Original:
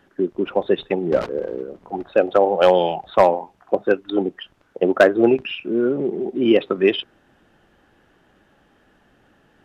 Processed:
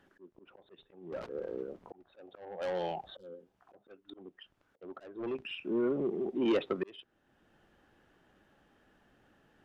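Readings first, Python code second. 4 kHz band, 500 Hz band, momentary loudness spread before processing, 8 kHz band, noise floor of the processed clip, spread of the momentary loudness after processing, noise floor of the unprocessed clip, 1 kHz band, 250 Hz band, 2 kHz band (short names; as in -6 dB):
-17.0 dB, -19.0 dB, 13 LU, n/a, -75 dBFS, 23 LU, -59 dBFS, -22.0 dB, -15.5 dB, -21.0 dB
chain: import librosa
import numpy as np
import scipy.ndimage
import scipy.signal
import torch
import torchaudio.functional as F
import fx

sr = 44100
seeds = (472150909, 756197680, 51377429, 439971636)

y = fx.spec_repair(x, sr, seeds[0], start_s=3.13, length_s=0.37, low_hz=540.0, high_hz=2900.0, source='both')
y = 10.0 ** (-14.0 / 20.0) * np.tanh(y / 10.0 ** (-14.0 / 20.0))
y = fx.auto_swell(y, sr, attack_ms=757.0)
y = y * 10.0 ** (-9.0 / 20.0)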